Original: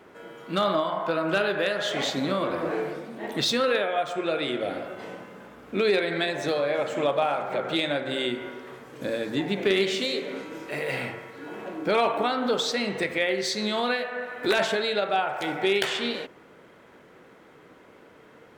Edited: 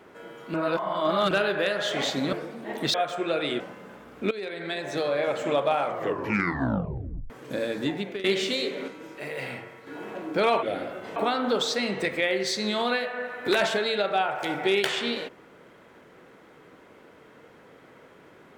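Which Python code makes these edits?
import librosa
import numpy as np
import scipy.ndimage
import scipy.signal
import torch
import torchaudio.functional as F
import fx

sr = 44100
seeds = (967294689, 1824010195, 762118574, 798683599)

y = fx.edit(x, sr, fx.reverse_span(start_s=0.54, length_s=0.77),
    fx.cut(start_s=2.33, length_s=0.54),
    fx.cut(start_s=3.48, length_s=0.44),
    fx.move(start_s=4.58, length_s=0.53, to_s=12.14),
    fx.fade_in_from(start_s=5.82, length_s=0.87, floor_db=-17.0),
    fx.tape_stop(start_s=7.32, length_s=1.49),
    fx.fade_out_to(start_s=9.35, length_s=0.4, floor_db=-18.0),
    fx.clip_gain(start_s=10.39, length_s=0.99, db=-4.5), tone=tone)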